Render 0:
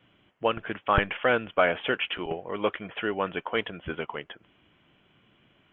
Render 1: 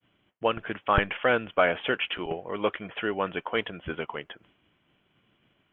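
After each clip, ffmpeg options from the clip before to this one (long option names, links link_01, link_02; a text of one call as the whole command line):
ffmpeg -i in.wav -af "agate=range=-33dB:threshold=-57dB:ratio=3:detection=peak" out.wav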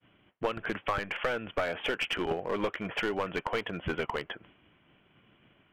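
ffmpeg -i in.wav -af "acompressor=threshold=-29dB:ratio=16,lowpass=frequency=3200:width=0.5412,lowpass=frequency=3200:width=1.3066,aeval=exprs='clip(val(0),-1,0.0251)':channel_layout=same,volume=5dB" out.wav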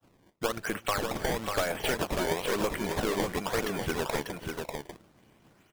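ffmpeg -i in.wav -af "acrusher=samples=19:mix=1:aa=0.000001:lfo=1:lforange=30.4:lforate=1,aecho=1:1:276|554|594:0.126|0.133|0.562,volume=1dB" out.wav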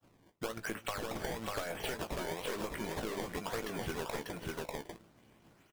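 ffmpeg -i in.wav -filter_complex "[0:a]acompressor=threshold=-32dB:ratio=6,asplit=2[link_01][link_02];[link_02]adelay=18,volume=-9dB[link_03];[link_01][link_03]amix=inputs=2:normalize=0,volume=-3dB" out.wav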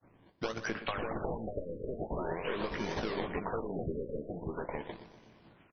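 ffmpeg -i in.wav -filter_complex "[0:a]asplit=2[link_01][link_02];[link_02]aecho=0:1:122|244|366|488|610:0.237|0.123|0.0641|0.0333|0.0173[link_03];[link_01][link_03]amix=inputs=2:normalize=0,afftfilt=real='re*lt(b*sr/1024,580*pow(6400/580,0.5+0.5*sin(2*PI*0.43*pts/sr)))':imag='im*lt(b*sr/1024,580*pow(6400/580,0.5+0.5*sin(2*PI*0.43*pts/sr)))':win_size=1024:overlap=0.75,volume=3dB" out.wav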